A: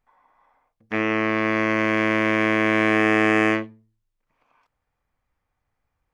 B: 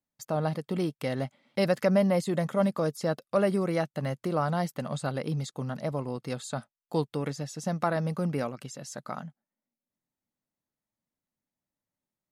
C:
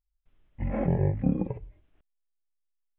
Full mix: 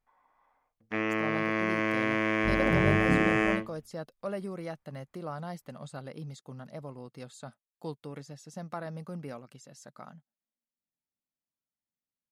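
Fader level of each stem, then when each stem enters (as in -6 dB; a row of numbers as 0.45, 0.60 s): -7.5, -10.5, -2.5 dB; 0.00, 0.90, 1.85 s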